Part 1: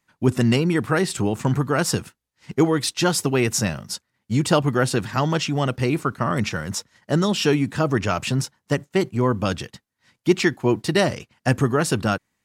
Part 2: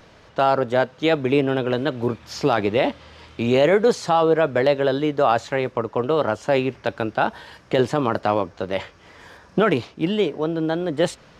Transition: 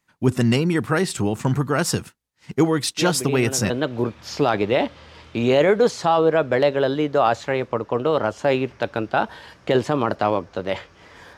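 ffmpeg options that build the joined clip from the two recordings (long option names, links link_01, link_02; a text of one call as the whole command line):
ffmpeg -i cue0.wav -i cue1.wav -filter_complex "[1:a]asplit=2[link_01][link_02];[0:a]apad=whole_dur=11.37,atrim=end=11.37,atrim=end=3.702[link_03];[link_02]atrim=start=1.738:end=9.41[link_04];[link_01]atrim=start=1.01:end=1.74,asetpts=PTS-STARTPTS,volume=-9dB,afade=type=in:duration=0.004:curve=hsin,afade=type=out:start_time=0.726:duration=0.004:curve=hsin,adelay=2970[link_05];[link_03][link_04]acrossfade=duration=0.004:curve1=hsin:curve2=hsin[link_06];[link_06][link_05]amix=inputs=2:normalize=0" out.wav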